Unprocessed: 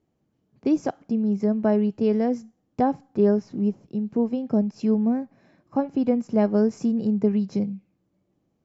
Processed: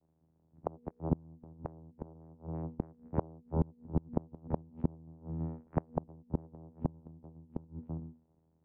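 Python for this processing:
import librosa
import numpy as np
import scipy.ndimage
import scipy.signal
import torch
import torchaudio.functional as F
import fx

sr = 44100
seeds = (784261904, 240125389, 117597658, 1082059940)

p1 = fx.vocoder(x, sr, bands=4, carrier='saw', carrier_hz=80.8)
p2 = p1 + fx.echo_single(p1, sr, ms=332, db=-16.0, dry=0)
p3 = fx.env_lowpass_down(p2, sr, base_hz=1000.0, full_db=-17.5)
p4 = scipy.signal.sosfilt(scipy.signal.butter(4, 1700.0, 'lowpass', fs=sr, output='sos'), p3)
p5 = fx.hum_notches(p4, sr, base_hz=60, count=8)
p6 = fx.gate_flip(p5, sr, shuts_db=-18.0, range_db=-32)
y = F.gain(torch.from_numpy(p6), 1.5).numpy()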